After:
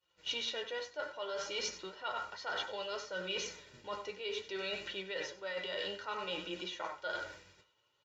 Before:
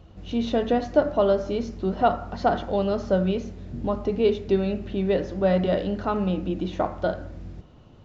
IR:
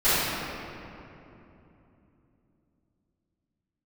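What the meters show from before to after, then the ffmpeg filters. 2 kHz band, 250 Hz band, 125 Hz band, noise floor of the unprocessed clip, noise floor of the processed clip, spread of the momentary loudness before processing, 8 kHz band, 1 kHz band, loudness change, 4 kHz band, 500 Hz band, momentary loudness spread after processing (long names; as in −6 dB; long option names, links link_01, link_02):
−2.5 dB, −26.0 dB, −29.5 dB, −49 dBFS, −76 dBFS, 8 LU, can't be measured, −15.0 dB, −14.5 dB, +1.5 dB, −18.0 dB, 5 LU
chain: -filter_complex "[0:a]bandpass=frequency=1800:width_type=q:width=0.94:csg=0,aecho=1:1:2.1:0.65,aecho=1:1:95:0.237,agate=range=-33dB:threshold=-50dB:ratio=3:detection=peak,acrossover=split=1400[link_01][link_02];[link_02]crystalizer=i=1.5:c=0[link_03];[link_01][link_03]amix=inputs=2:normalize=0,flanger=delay=5.5:depth=4.8:regen=50:speed=0.6:shape=sinusoidal,areverse,acompressor=threshold=-43dB:ratio=16,areverse,crystalizer=i=5:c=0,volume=4.5dB"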